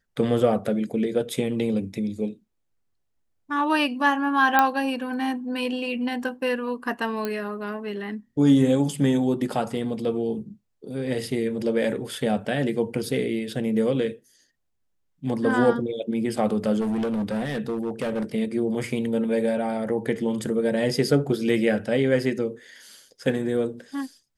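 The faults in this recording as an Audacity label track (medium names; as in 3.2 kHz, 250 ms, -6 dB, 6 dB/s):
4.590000	4.590000	pop -5 dBFS
7.250000	7.250000	pop -14 dBFS
16.800000	18.240000	clipped -22.5 dBFS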